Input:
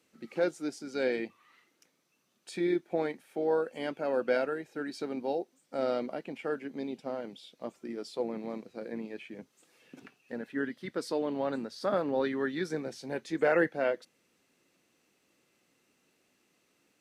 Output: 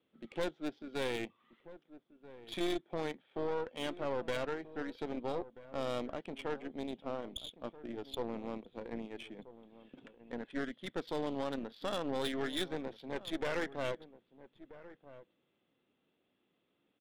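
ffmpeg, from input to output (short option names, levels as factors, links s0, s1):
-filter_complex "[0:a]acrossover=split=2500[s0][s1];[s0]alimiter=limit=0.0708:level=0:latency=1:release=110[s2];[s1]lowpass=f=3400:t=q:w=9.7[s3];[s2][s3]amix=inputs=2:normalize=0,adynamicsmooth=sensitivity=8:basefreq=1600,aeval=exprs='(tanh(28.2*val(0)+0.75)-tanh(0.75))/28.2':c=same,asplit=2[s4][s5];[s5]adelay=1283,volume=0.158,highshelf=f=4000:g=-28.9[s6];[s4][s6]amix=inputs=2:normalize=0"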